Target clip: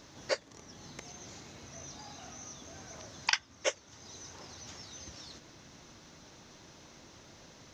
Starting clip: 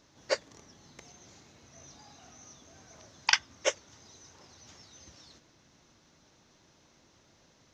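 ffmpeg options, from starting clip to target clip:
ffmpeg -i in.wav -af "acompressor=threshold=-58dB:ratio=1.5,volume=9dB" out.wav

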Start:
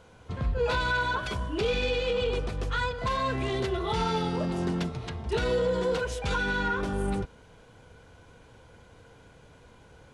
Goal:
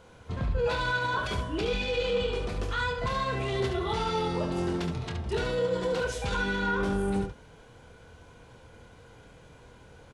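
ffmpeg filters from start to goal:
ffmpeg -i in.wav -af "alimiter=limit=-22.5dB:level=0:latency=1:release=23,aecho=1:1:25|71:0.422|0.473" out.wav

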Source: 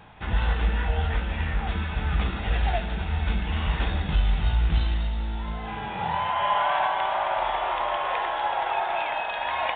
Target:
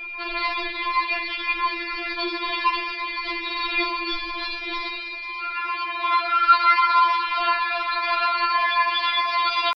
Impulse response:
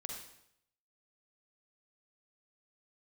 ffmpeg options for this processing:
-af "asetrate=58866,aresample=44100,atempo=0.749154,aeval=exprs='val(0)+0.00562*sin(2*PI*2400*n/s)':channel_layout=same,afftfilt=real='re*4*eq(mod(b,16),0)':imag='im*4*eq(mod(b,16),0)':win_size=2048:overlap=0.75,volume=8.5dB"

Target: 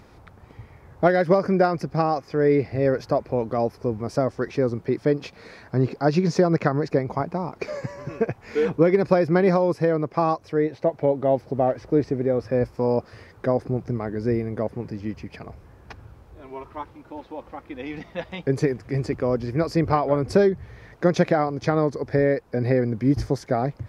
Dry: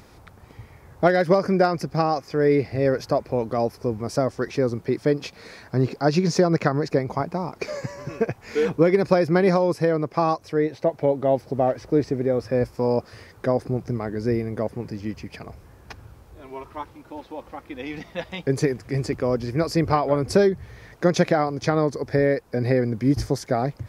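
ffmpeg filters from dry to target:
ffmpeg -i in.wav -af "highshelf=frequency=4500:gain=-10" out.wav

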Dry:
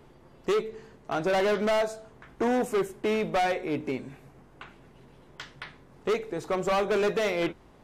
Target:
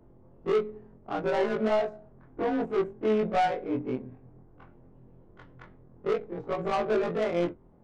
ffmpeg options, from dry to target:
ffmpeg -i in.wav -af "afftfilt=real='re':imag='-im':win_size=2048:overlap=0.75,adynamicsmooth=sensitivity=2:basefreq=740,volume=3.5dB" out.wav

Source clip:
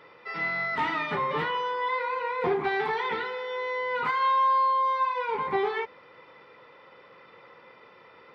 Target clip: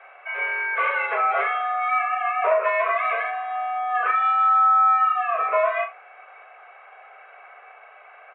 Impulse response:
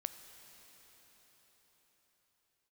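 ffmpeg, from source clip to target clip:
-filter_complex "[0:a]asettb=1/sr,asplit=3[link_01][link_02][link_03];[link_01]atrim=end=3.304[link_04];[link_02]atrim=start=3.3:end=5.4,asetpts=PTS-STARTPTS,afade=type=in:duration=0.004:curve=qsin,afade=type=out:start_time=2.096:duration=0.004:curve=qsin,bandreject=frequency=2000:width=10[link_05];[link_03]atrim=start=5.396[link_06];[link_04][link_05]acrossfade=duration=0.004:curve1=hsin:curve2=qsin[link_07];[link_07][link_06]acrossfade=duration=0.004:curve1=qsin:curve2=hsin,aecho=1:1:38|70:0.422|0.15,highpass=frequency=190:width_type=q:width=0.5412,highpass=frequency=190:width_type=q:width=1.307,lowpass=frequency=2400:width_type=q:width=0.5176,lowpass=frequency=2400:width_type=q:width=0.7071,lowpass=frequency=2400:width_type=q:width=1.932,afreqshift=240,volume=5dB"

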